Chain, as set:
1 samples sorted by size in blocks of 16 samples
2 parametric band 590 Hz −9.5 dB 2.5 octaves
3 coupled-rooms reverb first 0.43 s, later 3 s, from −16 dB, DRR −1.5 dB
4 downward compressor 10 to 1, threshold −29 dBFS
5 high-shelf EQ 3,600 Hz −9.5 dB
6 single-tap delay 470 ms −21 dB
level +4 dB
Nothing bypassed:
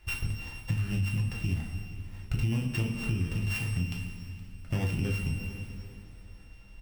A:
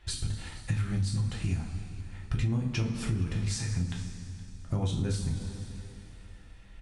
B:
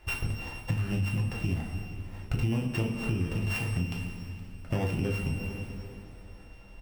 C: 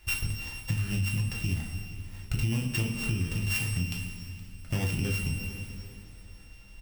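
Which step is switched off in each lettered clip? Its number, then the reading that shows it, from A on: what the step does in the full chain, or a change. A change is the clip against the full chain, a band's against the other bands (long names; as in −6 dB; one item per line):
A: 1, distortion level −9 dB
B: 2, 500 Hz band +6.0 dB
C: 5, 8 kHz band +8.0 dB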